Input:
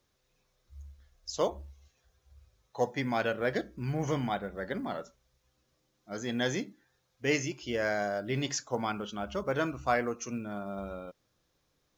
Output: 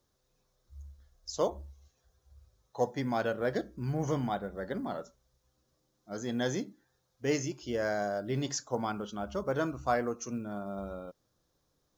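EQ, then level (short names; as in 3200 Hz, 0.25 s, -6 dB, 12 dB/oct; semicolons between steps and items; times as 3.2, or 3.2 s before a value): bell 2400 Hz -9.5 dB 1 oct; 0.0 dB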